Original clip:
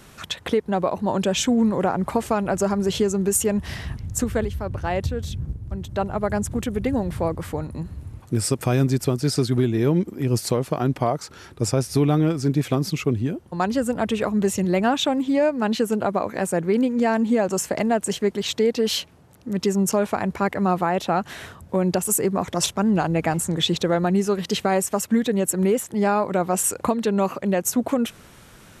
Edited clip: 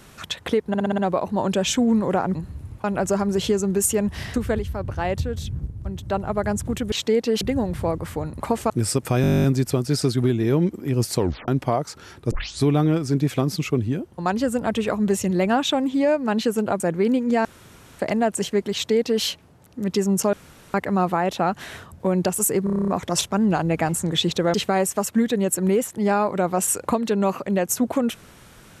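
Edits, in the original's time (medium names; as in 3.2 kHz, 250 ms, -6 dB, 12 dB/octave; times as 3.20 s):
0.68 s: stutter 0.06 s, 6 plays
2.05–2.35 s: swap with 7.77–8.26 s
3.85–4.20 s: delete
8.78 s: stutter 0.02 s, 12 plays
10.52 s: tape stop 0.30 s
11.65 s: tape start 0.32 s
16.14–16.49 s: delete
17.14–17.68 s: room tone
18.43–18.92 s: copy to 6.78 s
20.02–20.43 s: room tone
22.33 s: stutter 0.03 s, 9 plays
23.99–24.50 s: delete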